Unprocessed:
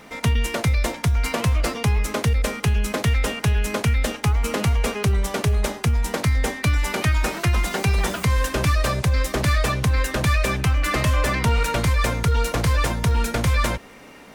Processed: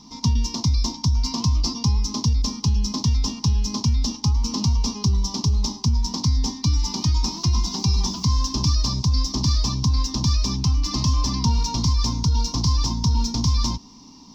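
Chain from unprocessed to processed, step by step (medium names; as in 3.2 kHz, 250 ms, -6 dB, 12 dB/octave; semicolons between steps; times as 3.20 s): FFT filter 160 Hz 0 dB, 260 Hz +4 dB, 560 Hz -24 dB, 1 kHz +1 dB, 1.5 kHz -29 dB, 2.3 kHz -20 dB, 5.5 kHz +14 dB, 9.3 kHz -25 dB, 14 kHz -17 dB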